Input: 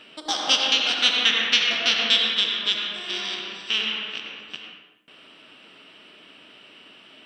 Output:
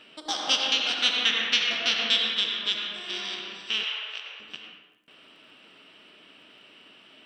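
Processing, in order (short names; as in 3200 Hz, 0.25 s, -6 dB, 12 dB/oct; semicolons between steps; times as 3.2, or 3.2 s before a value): crackle 27/s -54 dBFS; 3.83–4.4 HPF 500 Hz 24 dB/oct; gain -4 dB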